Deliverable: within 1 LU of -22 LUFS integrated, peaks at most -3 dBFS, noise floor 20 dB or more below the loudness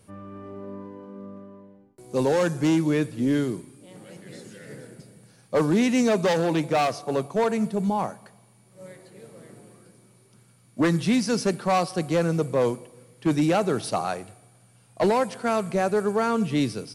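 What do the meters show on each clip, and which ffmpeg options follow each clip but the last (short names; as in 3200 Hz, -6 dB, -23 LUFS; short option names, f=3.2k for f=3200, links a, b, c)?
loudness -24.0 LUFS; peak -11.5 dBFS; loudness target -22.0 LUFS
-> -af "volume=2dB"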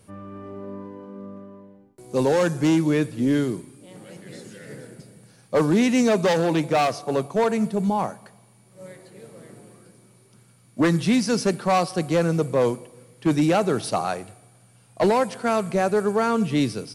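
loudness -22.0 LUFS; peak -9.5 dBFS; noise floor -55 dBFS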